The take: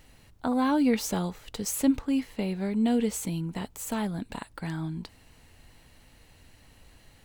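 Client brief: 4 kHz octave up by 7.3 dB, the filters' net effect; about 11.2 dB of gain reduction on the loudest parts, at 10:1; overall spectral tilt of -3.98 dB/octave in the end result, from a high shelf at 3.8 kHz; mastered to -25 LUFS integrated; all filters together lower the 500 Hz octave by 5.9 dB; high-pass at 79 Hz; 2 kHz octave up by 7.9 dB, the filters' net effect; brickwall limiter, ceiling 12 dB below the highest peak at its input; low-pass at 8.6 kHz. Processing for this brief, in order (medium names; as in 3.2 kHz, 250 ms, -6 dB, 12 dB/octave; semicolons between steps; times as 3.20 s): high-pass 79 Hz; low-pass 8.6 kHz; peaking EQ 500 Hz -7.5 dB; peaking EQ 2 kHz +9 dB; treble shelf 3.8 kHz -3 dB; peaking EQ 4 kHz +8.5 dB; compression 10:1, threshold -31 dBFS; trim +13 dB; peak limiter -16 dBFS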